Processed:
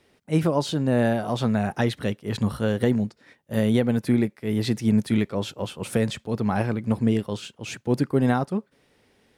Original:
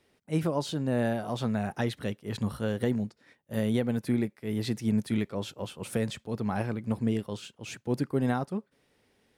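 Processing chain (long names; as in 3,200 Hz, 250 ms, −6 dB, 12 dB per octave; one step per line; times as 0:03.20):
high-shelf EQ 10,000 Hz −4 dB
level +6.5 dB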